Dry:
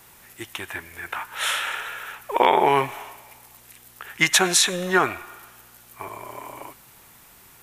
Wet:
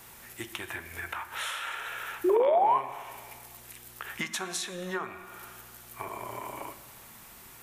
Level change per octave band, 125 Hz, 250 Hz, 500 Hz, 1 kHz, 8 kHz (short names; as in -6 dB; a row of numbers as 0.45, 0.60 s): -11.0, -7.5, -3.5, -6.5, -15.0 dB